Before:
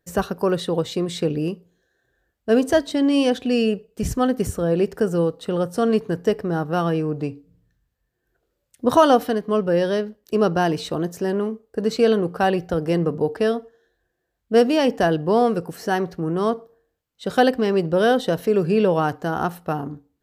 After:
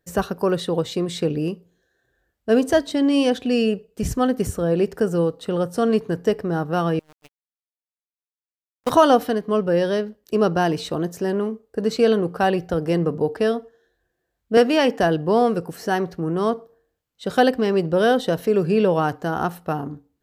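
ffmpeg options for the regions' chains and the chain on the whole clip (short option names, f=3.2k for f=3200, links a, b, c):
-filter_complex "[0:a]asettb=1/sr,asplit=3[a][b][c];[a]atrim=end=6.994[d];[b]atrim=start=6.99:end=8.9,asetpts=PTS-STARTPTS,afade=t=in:d=0.004:c=qsin,afade=t=out:st=1.906:d=0.004:c=qsin,tiltshelf=f=820:g=-8,aeval=exprs='val(0)*gte(abs(val(0)),0.0562)':c=same,agate=range=-29dB:threshold=-30dB:ratio=16:release=100:detection=peak[e];[c]atrim=start=8.896[f];[d][e]acrossfade=d=0.004:c1=hsin:c2=qsin[g];[g][f]acrossfade=d=0.004:c1=qsin:c2=hsin,asettb=1/sr,asplit=3[h][i][j];[h]atrim=end=14.574[k];[i]atrim=start=14.57:end=15,asetpts=PTS-STARTPTS,afade=t=in:d=0.004:c=qsin,afade=t=out:st=0.426:d=0.004:c=qsin,highpass=190,equalizer=f=1.7k:t=o:w=1.6:g=5.5[l];[j]atrim=start=14.996[m];[k][l]acrossfade=d=0.004:c1=hsin:c2=qsin[n];[n][m]acrossfade=d=0.004:c1=qsin:c2=hsin"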